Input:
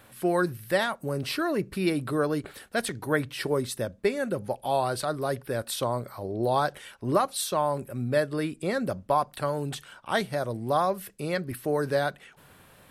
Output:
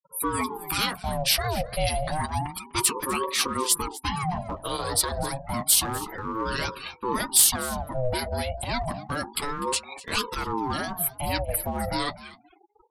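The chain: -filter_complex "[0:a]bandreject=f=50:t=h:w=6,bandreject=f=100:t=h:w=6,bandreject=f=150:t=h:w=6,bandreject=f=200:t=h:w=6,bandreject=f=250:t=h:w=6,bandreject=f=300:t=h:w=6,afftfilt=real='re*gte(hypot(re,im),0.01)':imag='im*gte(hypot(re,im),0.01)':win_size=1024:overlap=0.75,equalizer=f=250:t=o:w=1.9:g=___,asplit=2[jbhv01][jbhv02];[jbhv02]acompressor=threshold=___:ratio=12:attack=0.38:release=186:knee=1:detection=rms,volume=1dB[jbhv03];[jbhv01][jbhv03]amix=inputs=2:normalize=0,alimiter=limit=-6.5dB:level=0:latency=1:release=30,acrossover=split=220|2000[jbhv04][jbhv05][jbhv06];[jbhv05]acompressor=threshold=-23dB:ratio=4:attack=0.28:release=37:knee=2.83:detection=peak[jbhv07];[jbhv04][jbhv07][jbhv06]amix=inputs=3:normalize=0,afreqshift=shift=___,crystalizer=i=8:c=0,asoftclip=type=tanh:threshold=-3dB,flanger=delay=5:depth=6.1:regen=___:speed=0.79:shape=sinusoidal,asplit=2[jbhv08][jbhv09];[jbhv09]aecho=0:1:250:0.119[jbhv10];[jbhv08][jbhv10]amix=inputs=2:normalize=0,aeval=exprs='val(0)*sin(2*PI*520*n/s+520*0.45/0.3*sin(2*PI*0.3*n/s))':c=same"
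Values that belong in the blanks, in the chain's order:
11.5, -28dB, 71, -29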